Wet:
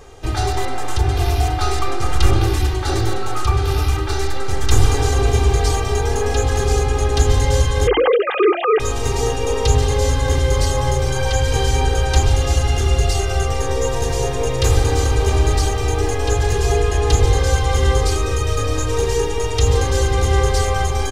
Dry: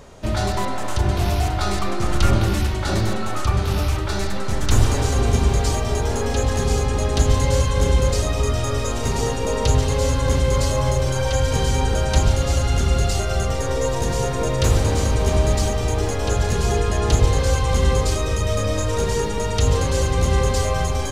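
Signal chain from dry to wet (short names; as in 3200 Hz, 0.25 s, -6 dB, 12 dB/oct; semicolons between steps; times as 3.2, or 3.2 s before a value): 7.87–8.8 sine-wave speech; notches 50/100/150/200/250/300/350 Hz; comb 2.5 ms, depth 82%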